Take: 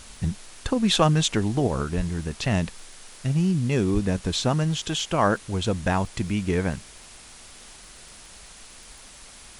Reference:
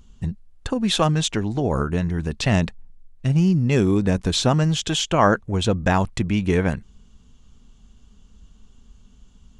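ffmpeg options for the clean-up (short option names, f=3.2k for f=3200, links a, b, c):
-filter_complex "[0:a]adeclick=t=4,asplit=3[a][b][c];[a]afade=t=out:st=1.96:d=0.02[d];[b]highpass=f=140:w=0.5412,highpass=f=140:w=1.3066,afade=t=in:st=1.96:d=0.02,afade=t=out:st=2.08:d=0.02[e];[c]afade=t=in:st=2.08:d=0.02[f];[d][e][f]amix=inputs=3:normalize=0,asplit=3[g][h][i];[g]afade=t=out:st=3.93:d=0.02[j];[h]highpass=f=140:w=0.5412,highpass=f=140:w=1.3066,afade=t=in:st=3.93:d=0.02,afade=t=out:st=4.05:d=0.02[k];[i]afade=t=in:st=4.05:d=0.02[l];[j][k][l]amix=inputs=3:normalize=0,afwtdn=0.0063,asetnsamples=n=441:p=0,asendcmd='1.67 volume volume 4.5dB',volume=0dB"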